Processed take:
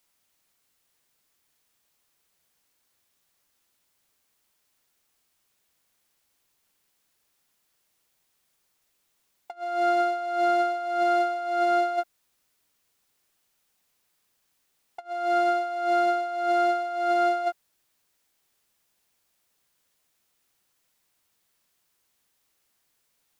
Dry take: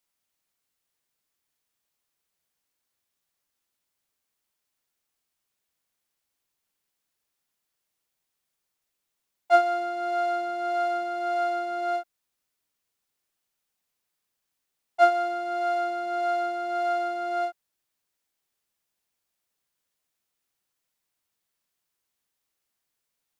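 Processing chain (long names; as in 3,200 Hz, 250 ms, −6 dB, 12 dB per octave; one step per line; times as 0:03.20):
compressor whose output falls as the input rises −30 dBFS, ratio −0.5
level +5 dB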